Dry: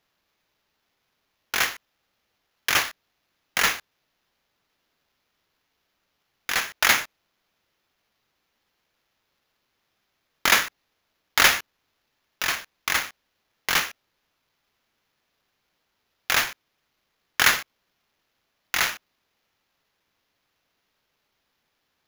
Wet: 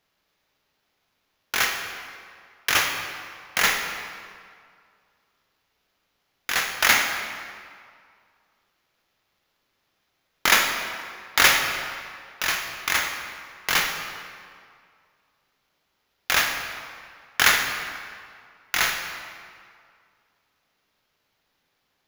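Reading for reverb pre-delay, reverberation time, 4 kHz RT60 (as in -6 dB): 9 ms, 2.1 s, 1.5 s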